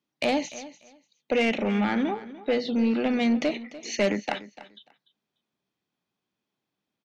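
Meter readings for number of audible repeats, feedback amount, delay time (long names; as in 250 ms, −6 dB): 2, 19%, 294 ms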